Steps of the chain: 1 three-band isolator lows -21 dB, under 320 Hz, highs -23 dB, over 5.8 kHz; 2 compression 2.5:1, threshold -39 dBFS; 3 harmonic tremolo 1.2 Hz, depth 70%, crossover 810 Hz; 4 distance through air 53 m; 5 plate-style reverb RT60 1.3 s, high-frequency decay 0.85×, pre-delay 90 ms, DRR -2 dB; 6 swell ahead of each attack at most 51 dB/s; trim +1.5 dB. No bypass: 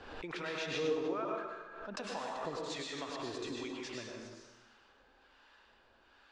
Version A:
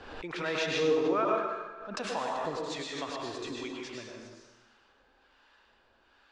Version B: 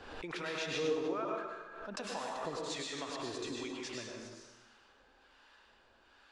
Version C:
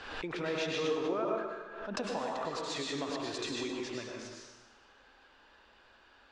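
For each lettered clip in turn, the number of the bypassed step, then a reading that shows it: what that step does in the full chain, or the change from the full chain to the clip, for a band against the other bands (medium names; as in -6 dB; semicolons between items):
2, mean gain reduction 4.0 dB; 4, 8 kHz band +3.5 dB; 3, crest factor change -2.0 dB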